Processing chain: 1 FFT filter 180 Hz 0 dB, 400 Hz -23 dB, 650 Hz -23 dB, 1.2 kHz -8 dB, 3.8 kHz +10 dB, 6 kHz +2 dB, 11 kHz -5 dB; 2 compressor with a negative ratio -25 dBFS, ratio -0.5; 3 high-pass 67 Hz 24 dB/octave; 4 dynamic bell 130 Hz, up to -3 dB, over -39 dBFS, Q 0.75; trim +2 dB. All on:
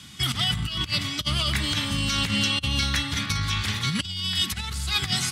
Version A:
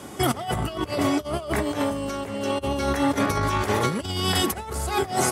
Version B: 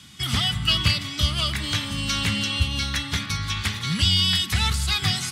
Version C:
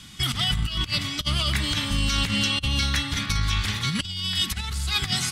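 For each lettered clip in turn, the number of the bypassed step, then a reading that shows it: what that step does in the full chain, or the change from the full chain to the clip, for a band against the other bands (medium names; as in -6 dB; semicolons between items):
1, 500 Hz band +18.0 dB; 2, momentary loudness spread change +3 LU; 3, crest factor change -2.0 dB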